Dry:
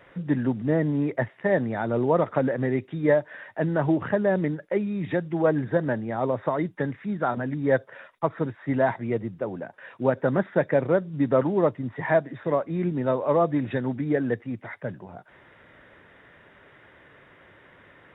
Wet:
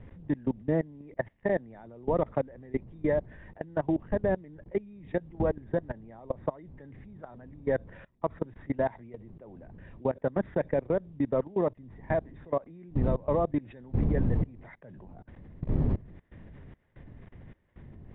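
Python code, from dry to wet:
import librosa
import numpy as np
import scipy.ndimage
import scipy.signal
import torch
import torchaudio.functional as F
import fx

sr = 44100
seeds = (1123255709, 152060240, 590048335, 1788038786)

y = fx.dmg_wind(x, sr, seeds[0], corner_hz=150.0, level_db=-29.0)
y = fx.air_absorb(y, sr, metres=200.0)
y = fx.level_steps(y, sr, step_db=23)
y = fx.peak_eq(y, sr, hz=1400.0, db=-6.5, octaves=0.46)
y = y * 10.0 ** (-1.5 / 20.0)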